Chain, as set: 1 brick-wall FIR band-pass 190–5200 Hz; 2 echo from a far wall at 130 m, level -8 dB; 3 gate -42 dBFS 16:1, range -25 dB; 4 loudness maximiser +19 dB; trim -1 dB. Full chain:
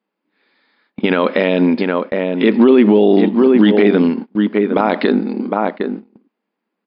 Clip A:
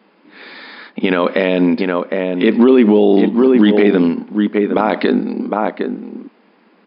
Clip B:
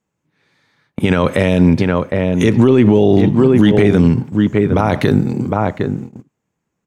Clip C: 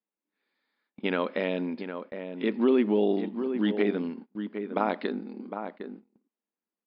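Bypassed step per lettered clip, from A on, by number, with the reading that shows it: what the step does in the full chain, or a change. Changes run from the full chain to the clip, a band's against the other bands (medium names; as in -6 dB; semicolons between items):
3, momentary loudness spread change +4 LU; 1, 125 Hz band +12.5 dB; 4, crest factor change +7.5 dB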